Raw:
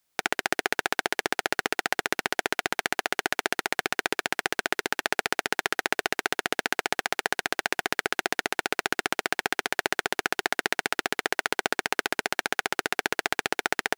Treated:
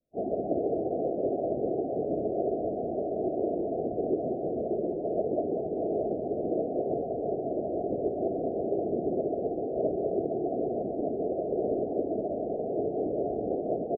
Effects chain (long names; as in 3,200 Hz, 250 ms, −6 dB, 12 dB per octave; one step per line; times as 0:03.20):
random phases in long frames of 100 ms
Butterworth low-pass 680 Hz 96 dB per octave
single-tap delay 184 ms −8.5 dB
level +6 dB